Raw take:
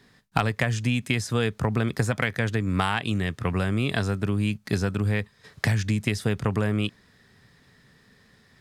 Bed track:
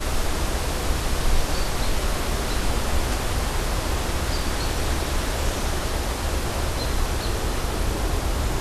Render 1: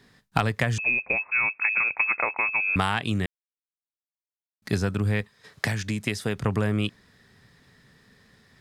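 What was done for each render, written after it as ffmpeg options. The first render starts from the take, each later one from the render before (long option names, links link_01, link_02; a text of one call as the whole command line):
ffmpeg -i in.wav -filter_complex "[0:a]asettb=1/sr,asplit=3[link_01][link_02][link_03];[link_01]atrim=end=0.784[link_04];[link_02]atrim=start=0.78:end=2.76,asetpts=PTS-STARTPTS,afade=type=in:duration=0.004:curve=qsin,afade=type=out:start_time=1.976:duration=0.004:curve=qsin,lowpass=frequency=2300:width_type=q:width=0.5098,lowpass=frequency=2300:width_type=q:width=0.6013,lowpass=frequency=2300:width_type=q:width=0.9,lowpass=frequency=2300:width_type=q:width=2.563,afreqshift=-2700[link_05];[link_03]atrim=start=2.756[link_06];[link_04][link_05]acrossfade=duration=0.004:curve1=hsin:curve2=qsin[link_07];[link_07][link_06]acrossfade=duration=0.004:curve1=qsin:curve2=hsin,asettb=1/sr,asplit=3[link_08][link_09][link_10];[link_08]atrim=end=5.214[link_11];[link_09]atrim=start=5.21:end=6.38,asetpts=PTS-STARTPTS,afade=type=in:duration=0.004:curve=qsin,afade=type=out:start_time=1.166:duration=0.004:curve=qsin,lowshelf=frequency=140:gain=-10[link_12];[link_10]atrim=start=6.376[link_13];[link_11][link_12]acrossfade=duration=0.004:curve1=hsin:curve2=qsin[link_14];[link_14][link_13]acrossfade=duration=0.004:curve1=qsin:curve2=hsin,asplit=3[link_15][link_16][link_17];[link_15]atrim=end=3.26,asetpts=PTS-STARTPTS,afade=type=out:start_time=3.256:duration=0.004:curve=hsin[link_18];[link_16]atrim=start=3.26:end=4.62,asetpts=PTS-STARTPTS,volume=0[link_19];[link_17]atrim=start=4.62,asetpts=PTS-STARTPTS,afade=type=in:duration=0.004:curve=hsin[link_20];[link_18][link_19][link_20]concat=n=3:v=0:a=1" out.wav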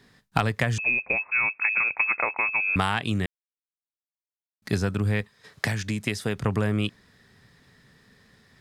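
ffmpeg -i in.wav -af anull out.wav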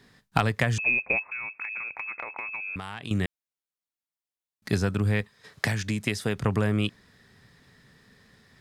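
ffmpeg -i in.wav -filter_complex "[0:a]asettb=1/sr,asplit=3[link_01][link_02][link_03];[link_01]atrim=end=1.194[link_04];[link_02]atrim=start=1.19:end=3.11,asetpts=PTS-STARTPTS,afade=type=in:duration=0.004:curve=qsin,afade=type=out:start_time=1.916:duration=0.004:curve=qsin,acompressor=threshold=-32dB:ratio=6:attack=3.2:release=140:knee=1:detection=peak[link_05];[link_03]atrim=start=3.106[link_06];[link_04][link_05]acrossfade=duration=0.004:curve1=hsin:curve2=qsin[link_07];[link_07][link_06]acrossfade=duration=0.004:curve1=qsin:curve2=hsin" out.wav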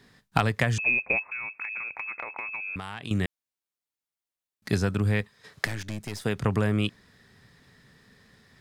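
ffmpeg -i in.wav -filter_complex "[0:a]asettb=1/sr,asplit=3[link_01][link_02][link_03];[link_01]atrim=end=5.654[link_04];[link_02]atrim=start=5.65:end=6.25,asetpts=PTS-STARTPTS,afade=type=in:duration=0.004:curve=qsin,afade=type=out:start_time=0.596:duration=0.004:curve=qsin,aeval=exprs='(tanh(31.6*val(0)+0.75)-tanh(0.75))/31.6':channel_layout=same[link_05];[link_03]atrim=start=6.246[link_06];[link_04][link_05]acrossfade=duration=0.004:curve1=hsin:curve2=qsin[link_07];[link_07][link_06]acrossfade=duration=0.004:curve1=qsin:curve2=hsin" out.wav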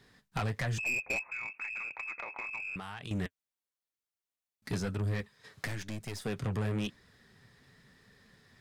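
ffmpeg -i in.wav -af "flanger=delay=1.3:depth=8.5:regen=-45:speed=0.99:shape=triangular,aeval=exprs='(tanh(25.1*val(0)+0.1)-tanh(0.1))/25.1':channel_layout=same" out.wav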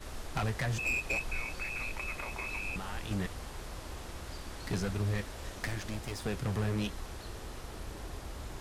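ffmpeg -i in.wav -i bed.wav -filter_complex "[1:a]volume=-18.5dB[link_01];[0:a][link_01]amix=inputs=2:normalize=0" out.wav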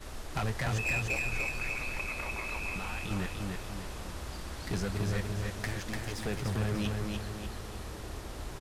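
ffmpeg -i in.wav -af "aecho=1:1:295|590|885|1180|1475|1770:0.668|0.301|0.135|0.0609|0.0274|0.0123" out.wav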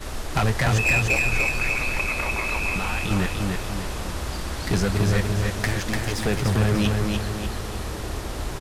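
ffmpeg -i in.wav -af "volume=11dB" out.wav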